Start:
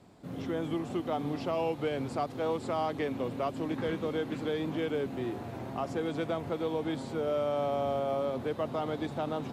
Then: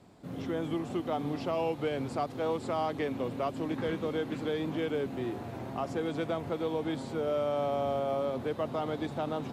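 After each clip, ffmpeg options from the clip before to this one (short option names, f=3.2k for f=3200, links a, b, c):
-af anull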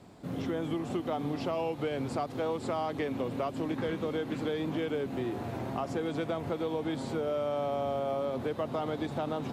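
-af "acompressor=threshold=-34dB:ratio=3,volume=4dB"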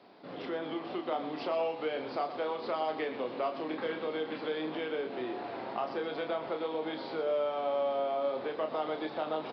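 -filter_complex "[0:a]highpass=400,asplit=2[a][b];[b]aecho=0:1:32.07|122.4:0.501|0.282[c];[a][c]amix=inputs=2:normalize=0,aresample=11025,aresample=44100"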